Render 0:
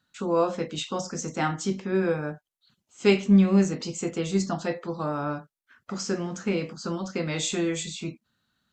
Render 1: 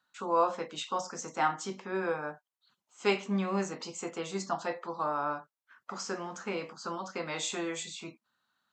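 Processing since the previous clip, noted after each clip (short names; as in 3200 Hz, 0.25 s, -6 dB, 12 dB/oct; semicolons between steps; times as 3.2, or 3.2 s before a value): HPF 470 Hz 6 dB/oct; bell 980 Hz +10 dB 1.2 oct; gain -6 dB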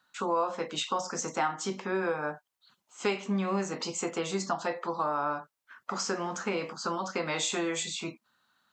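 compressor 3:1, threshold -35 dBFS, peak gain reduction 10.5 dB; gain +7 dB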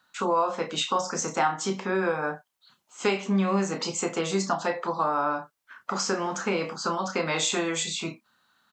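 doubler 31 ms -9 dB; gain +4 dB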